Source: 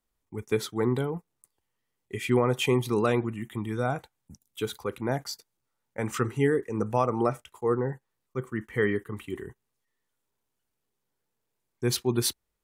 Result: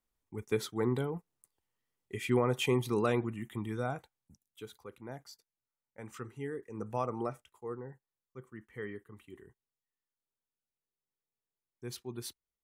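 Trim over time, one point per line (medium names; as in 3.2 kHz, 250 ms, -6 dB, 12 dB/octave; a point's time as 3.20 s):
3.67 s -5 dB
4.69 s -16 dB
6.45 s -16 dB
7.04 s -8.5 dB
7.83 s -16 dB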